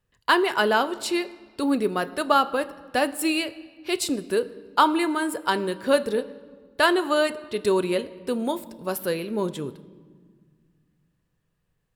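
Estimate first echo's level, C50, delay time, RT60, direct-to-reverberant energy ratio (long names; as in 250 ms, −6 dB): no echo audible, 17.0 dB, no echo audible, 1.7 s, 11.5 dB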